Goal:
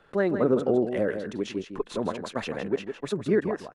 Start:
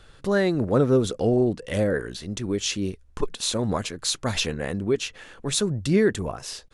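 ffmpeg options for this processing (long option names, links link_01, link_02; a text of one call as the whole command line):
ffmpeg -i in.wav -filter_complex "[0:a]acrossover=split=180 2400:gain=0.141 1 0.141[link_01][link_02][link_03];[link_01][link_02][link_03]amix=inputs=3:normalize=0,atempo=1.8,asplit=2[link_04][link_05];[link_05]aecho=0:1:159:0.376[link_06];[link_04][link_06]amix=inputs=2:normalize=0,volume=-1dB" out.wav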